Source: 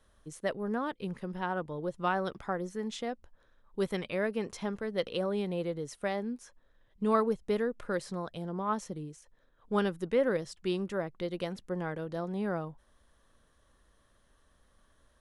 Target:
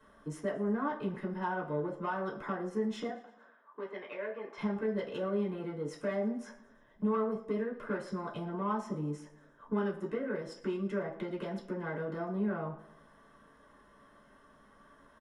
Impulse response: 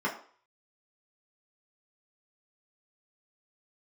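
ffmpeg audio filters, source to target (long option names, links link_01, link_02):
-filter_complex "[0:a]acompressor=threshold=-40dB:ratio=6,asoftclip=type=tanh:threshold=-36.5dB,asettb=1/sr,asplit=3[link_01][link_02][link_03];[link_01]atrim=end=3.084[link_04];[link_02]atrim=start=3.08:end=4.58,asetpts=PTS-STARTPTS,afade=type=in:duration=0.004:curve=qsin,afade=type=out:start_time=1.496:duration=0.004:curve=qsin,highpass=550,lowpass=2900[link_05];[link_03]atrim=start=4.576[link_06];[link_04][link_05]acrossfade=duration=0.004:curve1=hsin:curve2=qsin[link_07];[link_07][link_06]acrossfade=duration=0.004:curve1=qsin:curve2=hsin,aecho=1:1:114|228|342|456:0.1|0.054|0.0292|0.0157[link_08];[1:a]atrim=start_sample=2205[link_09];[link_08][link_09]afir=irnorm=-1:irlink=0"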